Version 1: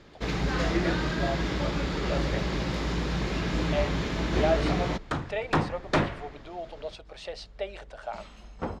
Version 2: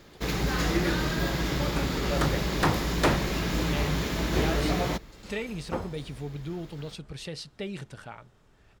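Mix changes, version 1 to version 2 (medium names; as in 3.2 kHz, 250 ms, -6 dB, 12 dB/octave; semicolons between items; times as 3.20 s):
speech: remove resonant high-pass 640 Hz, resonance Q 5.1; second sound: entry -2.90 s; master: remove distance through air 92 m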